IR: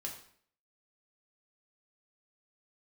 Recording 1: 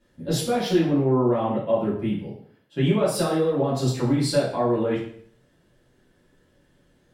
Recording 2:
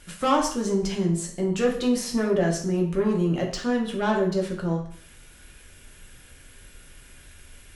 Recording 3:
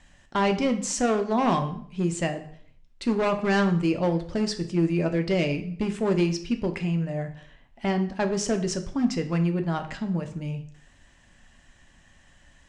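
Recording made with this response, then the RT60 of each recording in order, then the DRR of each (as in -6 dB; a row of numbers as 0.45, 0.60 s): 2; 0.55, 0.55, 0.55 s; -9.0, -0.5, 6.0 dB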